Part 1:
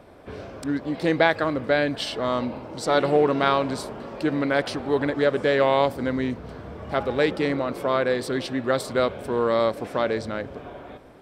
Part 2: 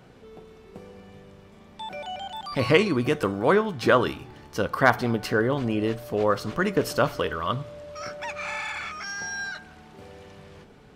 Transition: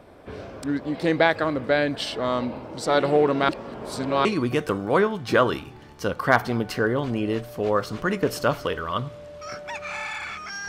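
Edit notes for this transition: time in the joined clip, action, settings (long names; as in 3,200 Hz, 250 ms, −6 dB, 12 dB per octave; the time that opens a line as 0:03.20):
part 1
0:03.49–0:04.25: reverse
0:04.25: continue with part 2 from 0:02.79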